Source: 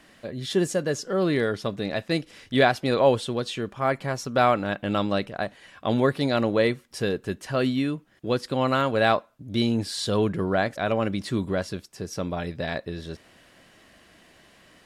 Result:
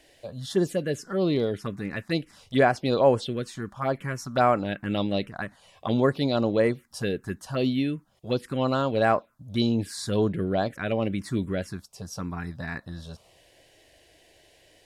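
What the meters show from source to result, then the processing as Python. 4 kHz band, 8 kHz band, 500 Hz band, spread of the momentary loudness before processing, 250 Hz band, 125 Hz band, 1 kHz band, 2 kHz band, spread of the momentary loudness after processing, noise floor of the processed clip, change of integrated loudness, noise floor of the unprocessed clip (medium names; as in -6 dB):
-4.0 dB, -3.5 dB, -1.5 dB, 11 LU, -0.5 dB, -0.5 dB, -2.0 dB, -4.0 dB, 13 LU, -60 dBFS, -1.5 dB, -56 dBFS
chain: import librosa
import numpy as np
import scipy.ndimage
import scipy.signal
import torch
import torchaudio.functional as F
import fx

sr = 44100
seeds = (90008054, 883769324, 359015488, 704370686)

y = fx.env_phaser(x, sr, low_hz=200.0, high_hz=3700.0, full_db=-16.5)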